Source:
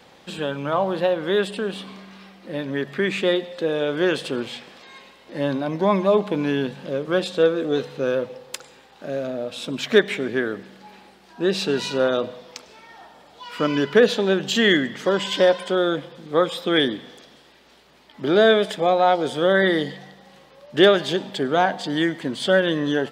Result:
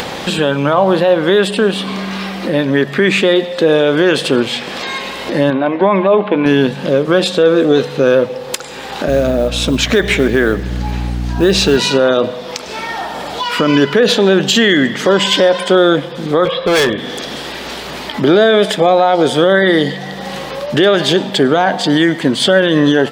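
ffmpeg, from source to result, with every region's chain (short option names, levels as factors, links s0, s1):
-filter_complex "[0:a]asettb=1/sr,asplit=3[s0][s1][s2];[s0]atrim=end=5.504[s3];[s1]atrim=start=5.5:end=6.46,asetpts=PTS-STARTPTS,afade=t=in:d=0.004:c=qsin,afade=t=out:st=0.956:d=0.004:c=qsin,lowpass=f=3000:w=0.5412,lowpass=f=3000:w=1.3066,lowshelf=f=340:g=-6.5,bandreject=f=160:w=5.1[s4];[s2]atrim=start=6.456[s5];[s3][s4]acrossfade=d=0.004:c1=hsin:c2=qsin[s6];[s6][s5]acrossfade=d=0.004:c1=qsin:c2=hsin,asettb=1/sr,asplit=3[s7][s8][s9];[s7]atrim=end=9.084[s10];[s8]atrim=start=9.08:end=11.77,asetpts=PTS-STARTPTS,afade=t=in:d=0.004:c=qsin,afade=t=out:st=2.686:d=0.004:c=qsin,equalizer=f=6400:w=4.4:g=4.5,acrusher=bits=8:mode=log:mix=0:aa=0.000001,aeval=exprs='val(0)+0.0178*(sin(2*PI*60*n/s)+sin(2*PI*2*60*n/s)/2+sin(2*PI*3*60*n/s)/3+sin(2*PI*4*60*n/s)/4+sin(2*PI*5*60*n/s)/5)':c=same[s11];[s9]atrim=start=11.766[s12];[s10][s11]acrossfade=d=0.004:c1=hsin:c2=qsin[s13];[s13][s12]acrossfade=d=0.004:c1=qsin:c2=hsin,asettb=1/sr,asplit=3[s14][s15][s16];[s14]atrim=end=16.454[s17];[s15]atrim=start=16.45:end=16.98,asetpts=PTS-STARTPTS,afade=t=in:d=0.004:c=qsin,afade=t=out:st=0.526:d=0.004:c=qsin,lowpass=f=3000:w=0.5412,lowpass=f=3000:w=1.3066,aecho=1:1:1.8:0.65,atrim=end_sample=23373,volume=14.1,asoftclip=hard,volume=0.0708[s18];[s16]atrim=start=16.976[s19];[s17][s18]acrossfade=d=0.004:c1=hsin:c2=qsin[s20];[s20][s19]acrossfade=d=0.004:c1=qsin:c2=hsin,acompressor=mode=upward:threshold=0.0562:ratio=2.5,alimiter=level_in=5.31:limit=0.891:release=50:level=0:latency=1,volume=0.891"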